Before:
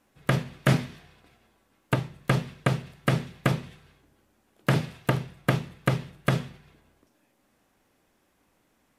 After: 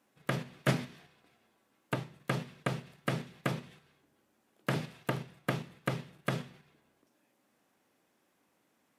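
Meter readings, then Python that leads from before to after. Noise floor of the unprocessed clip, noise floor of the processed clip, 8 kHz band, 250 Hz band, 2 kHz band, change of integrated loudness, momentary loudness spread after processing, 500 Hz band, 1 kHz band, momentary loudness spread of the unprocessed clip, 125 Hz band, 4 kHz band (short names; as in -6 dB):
-69 dBFS, -74 dBFS, -6.5 dB, -8.0 dB, -7.0 dB, -8.5 dB, 7 LU, -7.0 dB, -7.0 dB, 5 LU, -10.5 dB, -7.0 dB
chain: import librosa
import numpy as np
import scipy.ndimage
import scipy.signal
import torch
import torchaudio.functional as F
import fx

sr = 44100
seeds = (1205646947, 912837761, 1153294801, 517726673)

p1 = fx.level_steps(x, sr, step_db=18)
p2 = x + F.gain(torch.from_numpy(p1), -1.5).numpy()
p3 = scipy.signal.sosfilt(scipy.signal.butter(2, 150.0, 'highpass', fs=sr, output='sos'), p2)
y = F.gain(torch.from_numpy(p3), -8.5).numpy()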